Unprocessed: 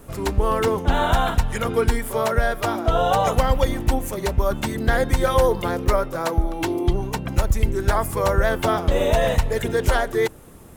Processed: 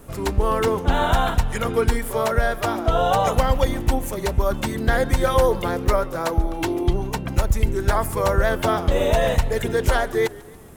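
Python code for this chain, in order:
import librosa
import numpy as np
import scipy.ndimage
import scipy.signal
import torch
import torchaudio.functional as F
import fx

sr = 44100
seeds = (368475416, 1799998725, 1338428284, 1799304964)

y = fx.echo_warbled(x, sr, ms=140, feedback_pct=55, rate_hz=2.8, cents=150, wet_db=-21.5)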